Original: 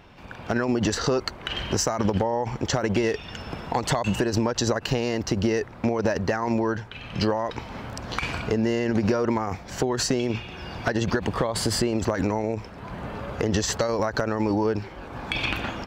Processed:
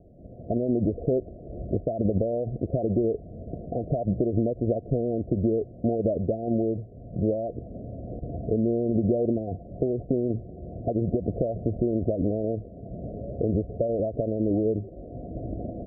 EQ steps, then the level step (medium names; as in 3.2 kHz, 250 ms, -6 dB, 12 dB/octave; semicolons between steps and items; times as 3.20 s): Chebyshev low-pass 710 Hz, order 10; 0.0 dB